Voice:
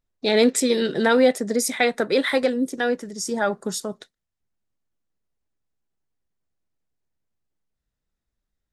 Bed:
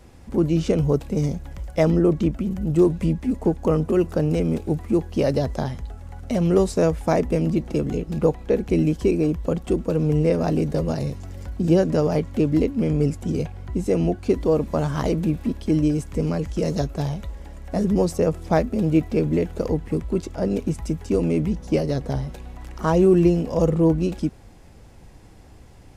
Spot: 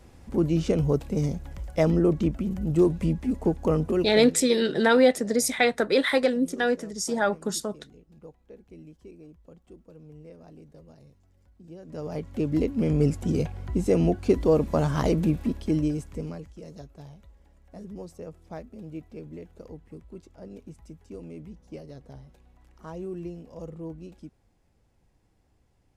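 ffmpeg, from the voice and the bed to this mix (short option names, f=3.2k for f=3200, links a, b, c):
-filter_complex "[0:a]adelay=3800,volume=-1.5dB[a];[1:a]volume=23dB,afade=t=out:st=3.86:d=0.53:silence=0.0630957,afade=t=in:st=11.81:d=1.28:silence=0.0473151,afade=t=out:st=15.23:d=1.31:silence=0.112202[b];[a][b]amix=inputs=2:normalize=0"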